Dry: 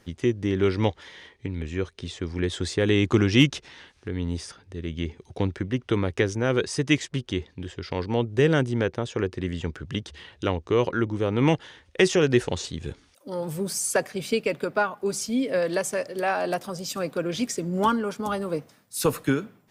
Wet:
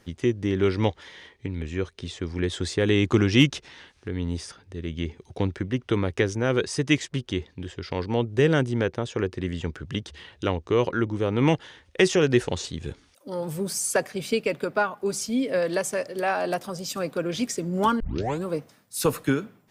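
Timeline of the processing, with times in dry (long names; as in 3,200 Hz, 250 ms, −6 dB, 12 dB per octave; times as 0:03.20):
0:18.00: tape start 0.45 s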